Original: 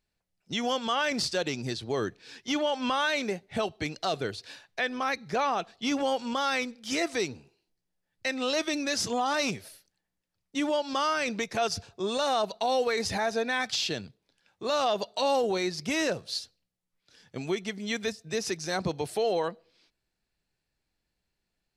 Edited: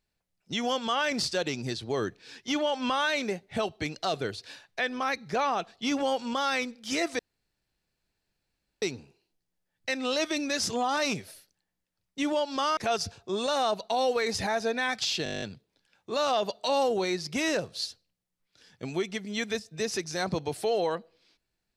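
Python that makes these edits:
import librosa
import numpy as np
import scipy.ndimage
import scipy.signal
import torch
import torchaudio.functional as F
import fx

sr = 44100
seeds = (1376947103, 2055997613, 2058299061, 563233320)

y = fx.edit(x, sr, fx.insert_room_tone(at_s=7.19, length_s=1.63),
    fx.cut(start_s=11.14, length_s=0.34),
    fx.stutter(start_s=13.95, slice_s=0.02, count=10), tone=tone)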